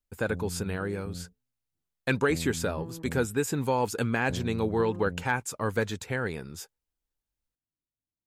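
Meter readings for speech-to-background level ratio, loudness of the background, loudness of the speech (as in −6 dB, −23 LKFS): 11.5 dB, −41.0 LKFS, −29.5 LKFS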